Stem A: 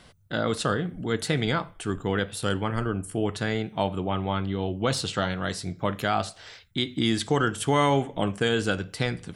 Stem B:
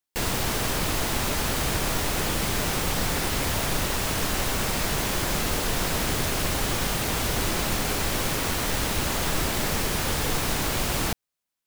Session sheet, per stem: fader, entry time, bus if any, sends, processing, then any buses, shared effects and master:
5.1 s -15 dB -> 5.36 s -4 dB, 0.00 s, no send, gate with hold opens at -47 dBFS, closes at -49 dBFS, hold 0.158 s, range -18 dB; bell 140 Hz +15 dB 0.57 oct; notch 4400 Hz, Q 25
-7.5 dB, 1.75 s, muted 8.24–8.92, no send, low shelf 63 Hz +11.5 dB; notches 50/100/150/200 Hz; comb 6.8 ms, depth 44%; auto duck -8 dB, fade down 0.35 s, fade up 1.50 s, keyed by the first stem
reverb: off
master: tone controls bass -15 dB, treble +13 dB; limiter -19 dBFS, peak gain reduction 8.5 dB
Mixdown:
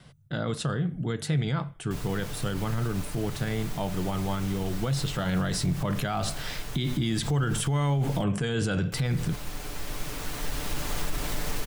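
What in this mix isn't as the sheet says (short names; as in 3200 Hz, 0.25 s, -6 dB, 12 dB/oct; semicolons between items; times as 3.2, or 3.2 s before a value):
stem A -15.0 dB -> -3.5 dB; master: missing tone controls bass -15 dB, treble +13 dB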